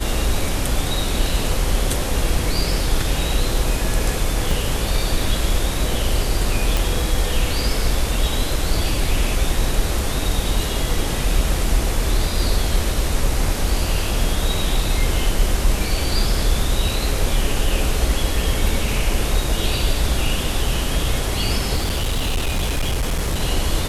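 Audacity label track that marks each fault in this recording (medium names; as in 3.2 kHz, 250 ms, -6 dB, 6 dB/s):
4.510000	4.510000	dropout 2.7 ms
6.770000	6.770000	pop
21.760000	23.410000	clipped -16.5 dBFS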